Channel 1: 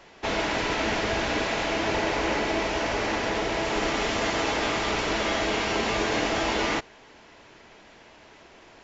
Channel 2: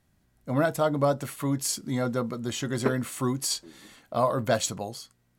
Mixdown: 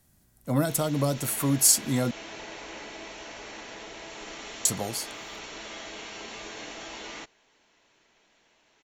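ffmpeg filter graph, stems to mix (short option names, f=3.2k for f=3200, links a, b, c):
-filter_complex "[0:a]equalizer=f=75:t=o:w=1:g=-7.5,bandreject=f=4.9k:w=9.4,adelay=450,volume=-17dB[a];[1:a]equalizer=f=3.1k:t=o:w=2.3:g=-5.5,volume=2.5dB,asplit=3[b][c][d];[b]atrim=end=2.11,asetpts=PTS-STARTPTS,afade=t=out:st=2.106:d=0.004:c=hsin[e];[c]atrim=start=2.11:end=4.65,asetpts=PTS-STARTPTS,volume=0[f];[d]atrim=start=4.65,asetpts=PTS-STARTPTS,afade=t=in:d=0.004:c=hsin[g];[e][f][g]concat=n=3:v=0:a=1[h];[a][h]amix=inputs=2:normalize=0,highshelf=f=3.2k:g=12,acrossover=split=320|3000[i][j][k];[j]acompressor=threshold=-28dB:ratio=6[l];[i][l][k]amix=inputs=3:normalize=0"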